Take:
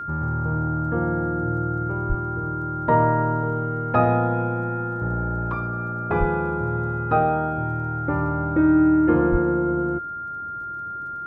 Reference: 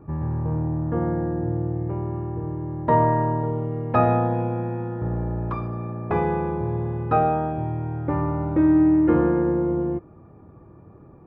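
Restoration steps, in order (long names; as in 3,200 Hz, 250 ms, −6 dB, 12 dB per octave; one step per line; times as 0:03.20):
click removal
notch filter 1,400 Hz, Q 30
high-pass at the plosives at 0:02.08/0:06.19/0:09.31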